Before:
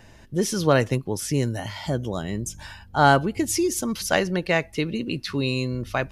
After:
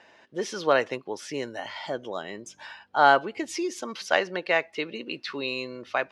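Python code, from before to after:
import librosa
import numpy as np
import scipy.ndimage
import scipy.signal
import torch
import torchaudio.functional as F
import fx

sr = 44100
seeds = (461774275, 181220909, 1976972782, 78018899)

y = fx.bandpass_edges(x, sr, low_hz=480.0, high_hz=3800.0)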